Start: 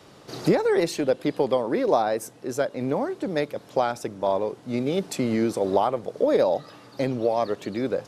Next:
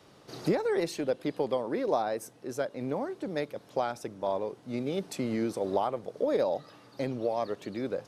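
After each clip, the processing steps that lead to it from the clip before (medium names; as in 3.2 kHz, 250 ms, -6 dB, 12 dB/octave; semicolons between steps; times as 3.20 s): band-stop 7.3 kHz, Q 20; trim -7 dB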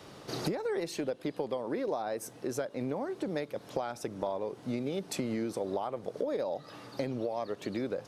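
compression 6:1, threshold -38 dBFS, peak gain reduction 15.5 dB; trim +7 dB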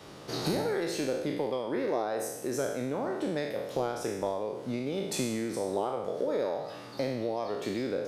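spectral sustain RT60 0.96 s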